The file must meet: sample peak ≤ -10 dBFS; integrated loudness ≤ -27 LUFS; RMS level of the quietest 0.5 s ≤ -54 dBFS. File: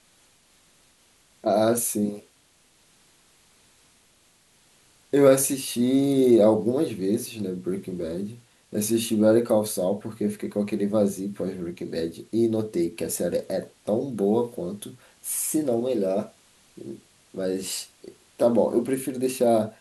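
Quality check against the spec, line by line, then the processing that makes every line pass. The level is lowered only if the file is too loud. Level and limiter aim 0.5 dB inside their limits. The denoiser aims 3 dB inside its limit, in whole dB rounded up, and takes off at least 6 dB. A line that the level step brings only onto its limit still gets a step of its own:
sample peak -5.5 dBFS: fail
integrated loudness -24.5 LUFS: fail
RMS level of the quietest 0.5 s -61 dBFS: OK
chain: gain -3 dB; limiter -10.5 dBFS

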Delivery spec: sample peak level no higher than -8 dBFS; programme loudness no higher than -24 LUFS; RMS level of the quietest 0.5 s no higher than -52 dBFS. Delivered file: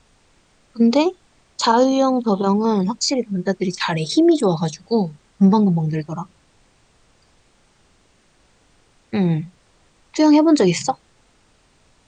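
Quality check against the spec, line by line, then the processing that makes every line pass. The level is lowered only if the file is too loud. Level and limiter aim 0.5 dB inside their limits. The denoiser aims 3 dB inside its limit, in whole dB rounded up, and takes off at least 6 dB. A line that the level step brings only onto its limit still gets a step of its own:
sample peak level -4.5 dBFS: fail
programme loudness -18.5 LUFS: fail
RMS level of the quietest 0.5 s -58 dBFS: OK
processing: gain -6 dB

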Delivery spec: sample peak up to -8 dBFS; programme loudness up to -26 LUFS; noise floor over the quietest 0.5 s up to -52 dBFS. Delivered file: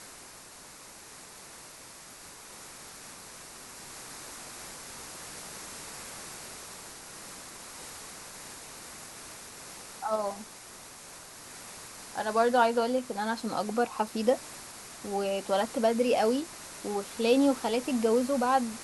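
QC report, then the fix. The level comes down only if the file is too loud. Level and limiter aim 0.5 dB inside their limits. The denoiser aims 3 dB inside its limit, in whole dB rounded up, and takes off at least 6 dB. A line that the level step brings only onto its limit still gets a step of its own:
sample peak -12.0 dBFS: OK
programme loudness -30.0 LUFS: OK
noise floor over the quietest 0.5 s -49 dBFS: fail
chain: denoiser 6 dB, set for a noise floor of -49 dBFS

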